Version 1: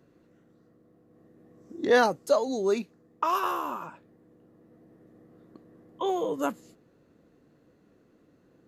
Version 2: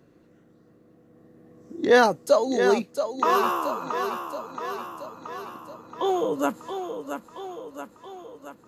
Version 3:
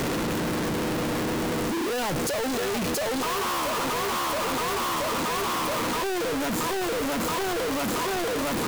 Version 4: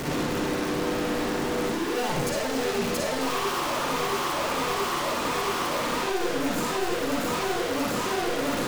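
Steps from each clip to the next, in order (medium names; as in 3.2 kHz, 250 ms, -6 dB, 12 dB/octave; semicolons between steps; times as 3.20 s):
thinning echo 676 ms, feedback 62%, high-pass 170 Hz, level -7.5 dB; trim +4 dB
one-bit comparator
reverberation RT60 0.60 s, pre-delay 43 ms, DRR -3.5 dB; trim -5 dB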